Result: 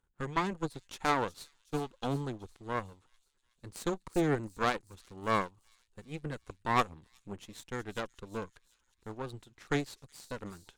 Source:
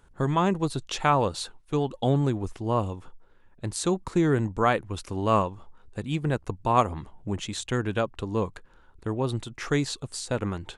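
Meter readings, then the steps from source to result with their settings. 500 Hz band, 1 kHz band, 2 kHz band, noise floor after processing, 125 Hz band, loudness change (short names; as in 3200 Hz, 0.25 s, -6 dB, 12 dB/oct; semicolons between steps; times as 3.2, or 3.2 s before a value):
-9.5 dB, -7.5 dB, -4.0 dB, -75 dBFS, -12.5 dB, -8.0 dB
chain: half-wave gain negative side -12 dB; bell 630 Hz -7.5 dB 0.23 oct; added harmonics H 6 -12 dB, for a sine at -7.5 dBFS; on a send: thin delay 0.37 s, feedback 61%, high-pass 5300 Hz, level -8 dB; on the sum: upward expander 1.5:1, over -39 dBFS; gain -6 dB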